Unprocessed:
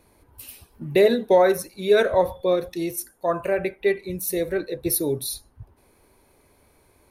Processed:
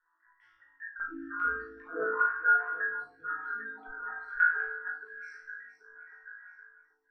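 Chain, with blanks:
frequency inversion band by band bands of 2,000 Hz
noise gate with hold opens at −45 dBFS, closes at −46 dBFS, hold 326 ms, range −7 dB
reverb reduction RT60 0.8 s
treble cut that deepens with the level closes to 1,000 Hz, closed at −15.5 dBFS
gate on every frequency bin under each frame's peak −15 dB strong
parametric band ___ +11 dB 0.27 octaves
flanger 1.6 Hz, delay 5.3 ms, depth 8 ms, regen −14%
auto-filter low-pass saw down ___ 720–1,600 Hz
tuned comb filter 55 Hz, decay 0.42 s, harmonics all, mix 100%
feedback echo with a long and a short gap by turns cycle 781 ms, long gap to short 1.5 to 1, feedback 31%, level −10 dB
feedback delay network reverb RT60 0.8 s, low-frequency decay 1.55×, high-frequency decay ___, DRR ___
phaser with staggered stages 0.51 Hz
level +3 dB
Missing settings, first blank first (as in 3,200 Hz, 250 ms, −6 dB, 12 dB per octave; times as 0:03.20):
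5,300 Hz, 5 Hz, 0.65×, 0.5 dB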